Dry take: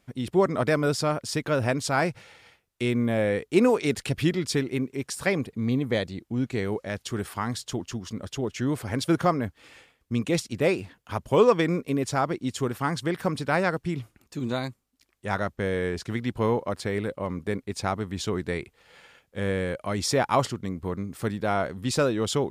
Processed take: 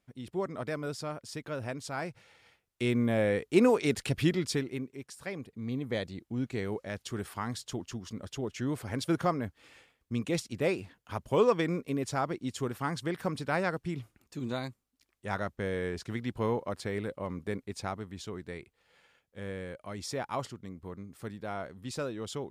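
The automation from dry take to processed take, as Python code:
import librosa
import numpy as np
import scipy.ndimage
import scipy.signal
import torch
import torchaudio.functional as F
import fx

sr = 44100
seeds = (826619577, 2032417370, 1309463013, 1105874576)

y = fx.gain(x, sr, db=fx.line((2.06, -12.0), (2.9, -3.0), (4.4, -3.0), (5.18, -15.0), (6.08, -6.0), (17.62, -6.0), (18.28, -12.0)))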